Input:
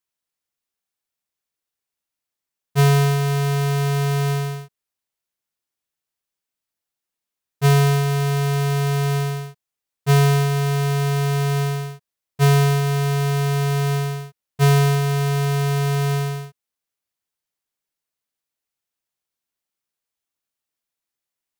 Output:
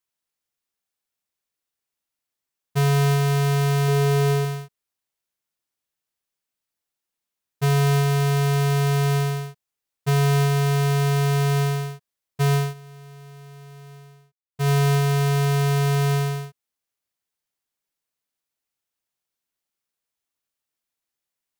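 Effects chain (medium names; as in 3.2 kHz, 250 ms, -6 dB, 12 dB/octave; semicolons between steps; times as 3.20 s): peak limiter -18 dBFS, peak gain reduction 5.5 dB; 3.88–4.45 s: peaking EQ 400 Hz +6 dB; 12.54–14.69 s: dip -23 dB, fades 0.20 s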